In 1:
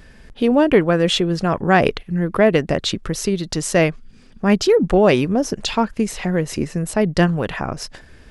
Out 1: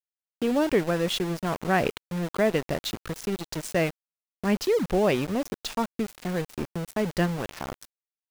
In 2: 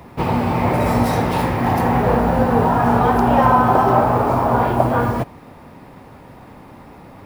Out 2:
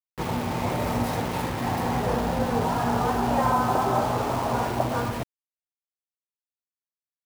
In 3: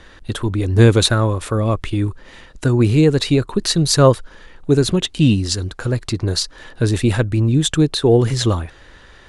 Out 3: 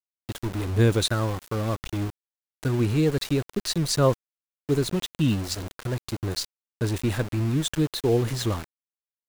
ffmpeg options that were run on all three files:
ffmpeg -i in.wav -af "aeval=exprs='val(0)*gte(abs(val(0)),0.0794)':channel_layout=same,volume=-9dB" out.wav

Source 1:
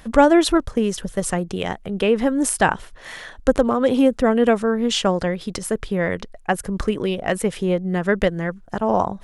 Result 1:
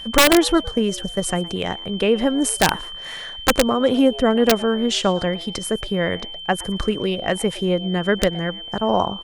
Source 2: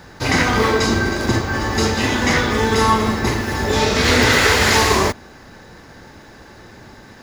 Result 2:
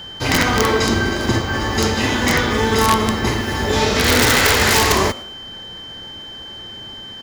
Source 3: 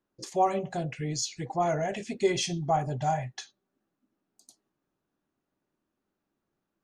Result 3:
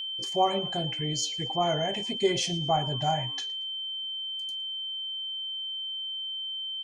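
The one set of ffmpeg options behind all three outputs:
ffmpeg -i in.wav -filter_complex "[0:a]asplit=3[link_01][link_02][link_03];[link_02]adelay=114,afreqshift=150,volume=-21.5dB[link_04];[link_03]adelay=228,afreqshift=300,volume=-31.7dB[link_05];[link_01][link_04][link_05]amix=inputs=3:normalize=0,aeval=exprs='(mod(1.88*val(0)+1,2)-1)/1.88':channel_layout=same,aeval=exprs='val(0)+0.0251*sin(2*PI*3100*n/s)':channel_layout=same" out.wav

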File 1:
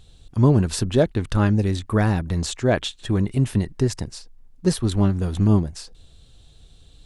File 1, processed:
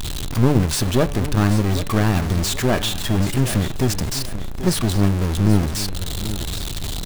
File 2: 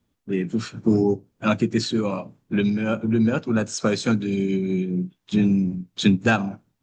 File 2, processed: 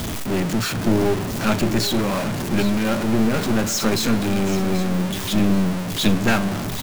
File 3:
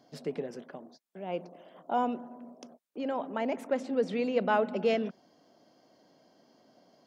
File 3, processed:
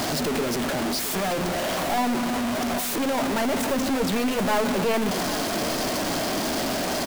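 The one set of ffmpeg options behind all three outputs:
ffmpeg -i in.wav -filter_complex "[0:a]aeval=exprs='val(0)+0.5*0.0841*sgn(val(0))':channel_layout=same,bandreject=frequency=500:width=12,aeval=exprs='clip(val(0),-1,0.0531)':channel_layout=same,bandreject=frequency=143.9:width_type=h:width=4,bandreject=frequency=287.8:width_type=h:width=4,bandreject=frequency=431.7:width_type=h:width=4,bandreject=frequency=575.6:width_type=h:width=4,bandreject=frequency=719.5:width_type=h:width=4,bandreject=frequency=863.4:width_type=h:width=4,bandreject=frequency=1007.3:width_type=h:width=4,bandreject=frequency=1151.2:width_type=h:width=4,bandreject=frequency=1295.1:width_type=h:width=4,bandreject=frequency=1439:width_type=h:width=4,bandreject=frequency=1582.9:width_type=h:width=4,bandreject=frequency=1726.8:width_type=h:width=4,bandreject=frequency=1870.7:width_type=h:width=4,bandreject=frequency=2014.6:width_type=h:width=4,bandreject=frequency=2158.5:width_type=h:width=4,bandreject=frequency=2302.4:width_type=h:width=4,bandreject=frequency=2446.3:width_type=h:width=4,bandreject=frequency=2590.2:width_type=h:width=4,bandreject=frequency=2734.1:width_type=h:width=4,bandreject=frequency=2878:width_type=h:width=4,bandreject=frequency=3021.9:width_type=h:width=4,bandreject=frequency=3165.8:width_type=h:width=4,bandreject=frequency=3309.7:width_type=h:width=4,bandreject=frequency=3453.6:width_type=h:width=4,bandreject=frequency=3597.5:width_type=h:width=4,bandreject=frequency=3741.4:width_type=h:width=4,bandreject=frequency=3885.3:width_type=h:width=4,bandreject=frequency=4029.2:width_type=h:width=4,bandreject=frequency=4173.1:width_type=h:width=4,asplit=2[link_01][link_02];[link_02]aecho=0:1:783|1566|2349:0.224|0.0739|0.0244[link_03];[link_01][link_03]amix=inputs=2:normalize=0,volume=1.5dB" out.wav

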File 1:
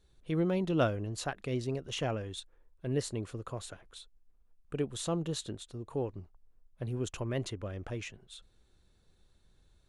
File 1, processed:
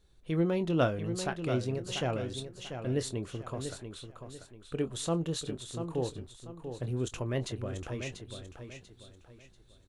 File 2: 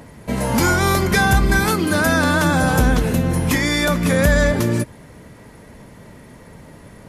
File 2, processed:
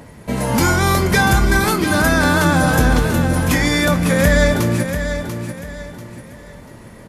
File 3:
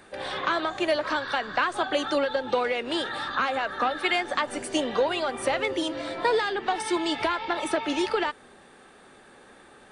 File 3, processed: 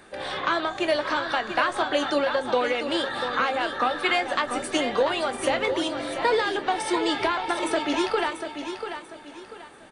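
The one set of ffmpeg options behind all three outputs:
ffmpeg -i in.wav -filter_complex "[0:a]asplit=2[link_01][link_02];[link_02]adelay=24,volume=-12dB[link_03];[link_01][link_03]amix=inputs=2:normalize=0,asplit=2[link_04][link_05];[link_05]aecho=0:1:690|1380|2070|2760:0.376|0.124|0.0409|0.0135[link_06];[link_04][link_06]amix=inputs=2:normalize=0,volume=1dB" out.wav

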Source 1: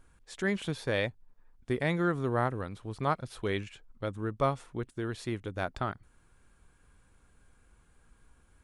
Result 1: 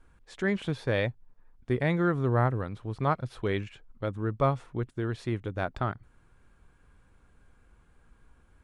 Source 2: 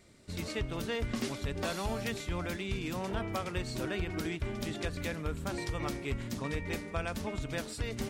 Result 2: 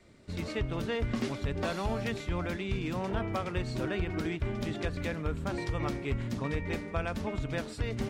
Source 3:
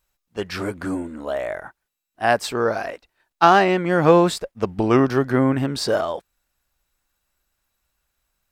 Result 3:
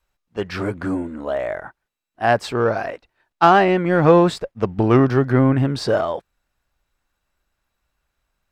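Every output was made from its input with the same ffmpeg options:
ffmpeg -i in.wav -filter_complex "[0:a]lowpass=frequency=2800:poles=1,adynamicequalizer=threshold=0.00891:dfrequency=120:dqfactor=2.7:tfrequency=120:tqfactor=2.7:attack=5:release=100:ratio=0.375:range=3:mode=boostabove:tftype=bell,asplit=2[link_01][link_02];[link_02]asoftclip=type=tanh:threshold=-16dB,volume=-9dB[link_03];[link_01][link_03]amix=inputs=2:normalize=0" out.wav

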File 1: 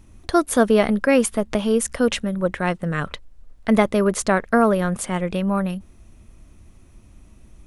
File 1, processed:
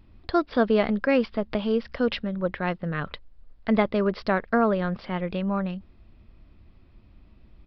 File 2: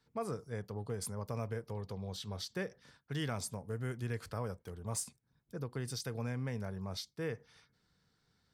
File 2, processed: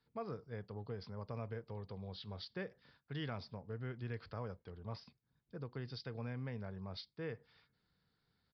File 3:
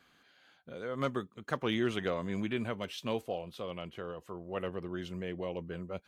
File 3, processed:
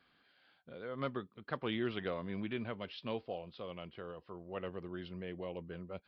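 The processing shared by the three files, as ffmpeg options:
ffmpeg -i in.wav -af "aresample=11025,aresample=44100,volume=-5dB" out.wav

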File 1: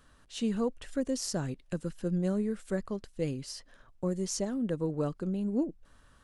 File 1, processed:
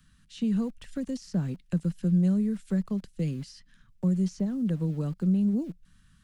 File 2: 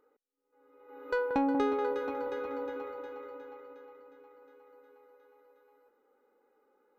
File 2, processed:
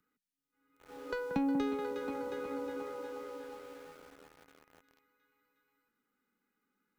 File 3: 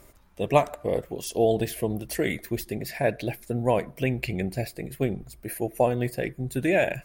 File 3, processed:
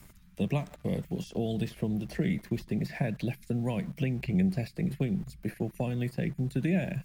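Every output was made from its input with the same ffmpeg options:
ffmpeg -i in.wav -filter_complex "[0:a]acrossover=split=240|2000[link_01][link_02][link_03];[link_01]acompressor=threshold=-35dB:ratio=4[link_04];[link_02]acompressor=threshold=-39dB:ratio=4[link_05];[link_03]acompressor=threshold=-44dB:ratio=4[link_06];[link_04][link_05][link_06]amix=inputs=3:normalize=0,equalizer=frequency=180:width_type=o:width=0.78:gain=12.5,acrossover=split=230|1400|5800[link_07][link_08][link_09][link_10];[link_08]aeval=exprs='val(0)*gte(abs(val(0)),0.00251)':channel_layout=same[link_11];[link_10]acompressor=threshold=-59dB:ratio=6[link_12];[link_07][link_11][link_09][link_12]amix=inputs=4:normalize=0" out.wav

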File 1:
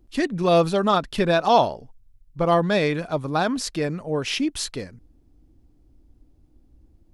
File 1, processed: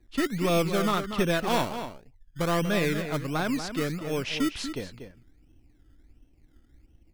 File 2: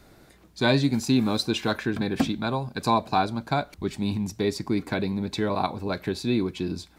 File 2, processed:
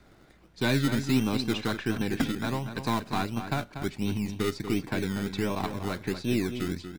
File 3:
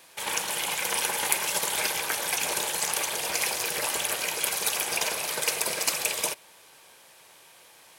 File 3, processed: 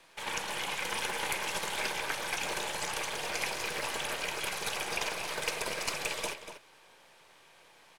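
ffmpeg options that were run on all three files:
ffmpeg -i in.wav -filter_complex "[0:a]aeval=exprs='if(lt(val(0),0),0.708*val(0),val(0))':channel_layout=same,acrossover=split=520|1100[link_01][link_02][link_03];[link_01]acrusher=samples=21:mix=1:aa=0.000001:lfo=1:lforange=12.6:lforate=1.4[link_04];[link_02]acompressor=threshold=-38dB:ratio=6[link_05];[link_03]aemphasis=mode=reproduction:type=50fm[link_06];[link_04][link_05][link_06]amix=inputs=3:normalize=0,asoftclip=type=hard:threshold=-15dB,asplit=2[link_07][link_08];[link_08]adelay=239.1,volume=-9dB,highshelf=frequency=4000:gain=-5.38[link_09];[link_07][link_09]amix=inputs=2:normalize=0,volume=-1.5dB" out.wav

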